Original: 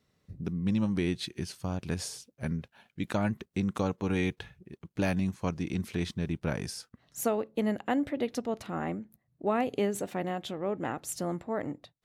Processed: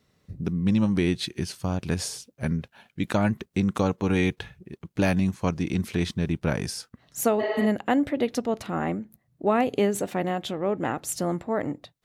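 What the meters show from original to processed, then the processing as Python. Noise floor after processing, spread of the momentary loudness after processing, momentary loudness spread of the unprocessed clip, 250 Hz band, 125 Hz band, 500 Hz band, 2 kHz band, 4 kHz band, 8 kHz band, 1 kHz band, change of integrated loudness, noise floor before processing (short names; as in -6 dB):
-70 dBFS, 11 LU, 11 LU, +6.0 dB, +6.0 dB, +6.0 dB, +6.5 dB, +6.0 dB, +6.0 dB, +6.0 dB, +6.0 dB, -76 dBFS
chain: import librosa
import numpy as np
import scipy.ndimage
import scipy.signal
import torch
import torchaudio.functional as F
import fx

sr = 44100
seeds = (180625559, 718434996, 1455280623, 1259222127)

y = fx.spec_repair(x, sr, seeds[0], start_s=7.42, length_s=0.21, low_hz=280.0, high_hz=6400.0, source='after')
y = F.gain(torch.from_numpy(y), 6.0).numpy()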